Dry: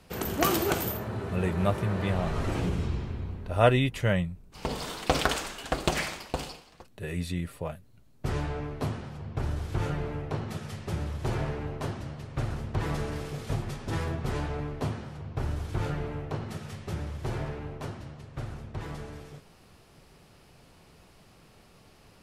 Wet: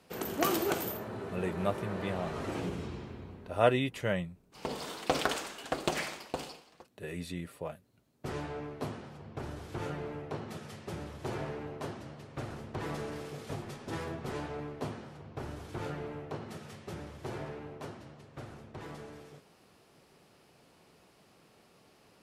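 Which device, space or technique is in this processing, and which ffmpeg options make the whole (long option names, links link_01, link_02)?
filter by subtraction: -filter_complex "[0:a]asplit=2[link_01][link_02];[link_02]lowpass=330,volume=-1[link_03];[link_01][link_03]amix=inputs=2:normalize=0,volume=-5dB"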